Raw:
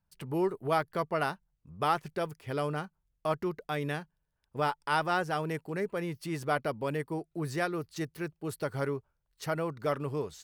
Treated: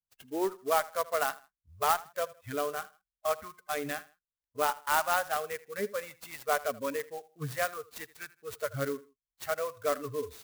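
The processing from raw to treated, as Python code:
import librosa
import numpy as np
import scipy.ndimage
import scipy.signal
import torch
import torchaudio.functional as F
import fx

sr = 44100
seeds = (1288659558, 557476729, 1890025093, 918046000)

y = fx.noise_reduce_blind(x, sr, reduce_db=25)
y = fx.echo_feedback(y, sr, ms=80, feedback_pct=30, wet_db=-19.5)
y = fx.clock_jitter(y, sr, seeds[0], jitter_ms=0.047)
y = y * librosa.db_to_amplitude(1.5)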